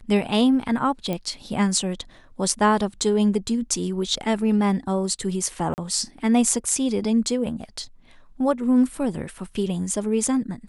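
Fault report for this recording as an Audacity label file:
1.130000	1.130000	pop -14 dBFS
5.740000	5.780000	dropout 39 ms

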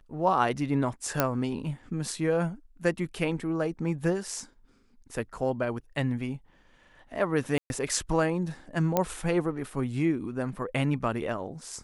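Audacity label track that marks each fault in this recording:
1.200000	1.200000	pop -7 dBFS
7.580000	7.700000	dropout 121 ms
8.970000	8.970000	pop -10 dBFS

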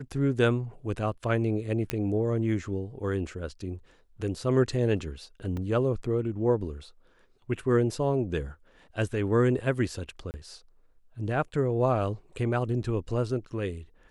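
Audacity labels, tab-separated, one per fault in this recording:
1.900000	1.900000	pop -13 dBFS
5.570000	5.570000	dropout 2.2 ms
10.310000	10.340000	dropout 29 ms

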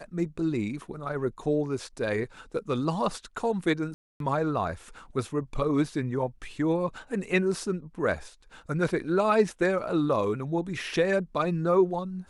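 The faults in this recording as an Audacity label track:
3.940000	4.200000	dropout 262 ms

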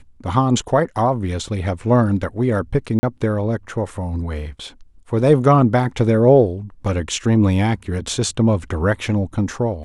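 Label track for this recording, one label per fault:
2.990000	3.030000	dropout 40 ms

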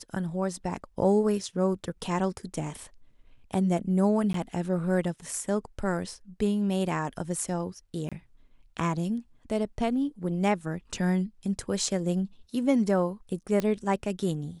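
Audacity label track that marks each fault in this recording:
4.330000	4.340000	dropout 13 ms
8.090000	8.120000	dropout 26 ms
13.600000	13.600000	pop -15 dBFS

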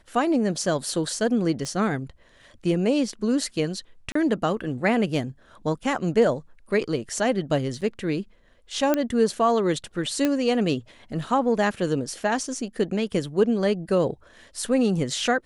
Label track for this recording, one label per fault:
1.650000	1.650000	pop -20 dBFS
4.120000	4.150000	dropout 34 ms
7.810000	7.820000	dropout 6.6 ms
8.940000	8.940000	pop -9 dBFS
10.250000	10.250000	pop -9 dBFS

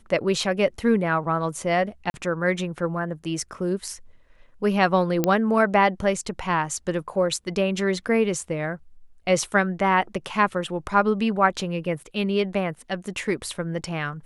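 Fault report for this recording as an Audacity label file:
2.100000	2.140000	dropout 41 ms
5.240000	5.240000	pop -7 dBFS

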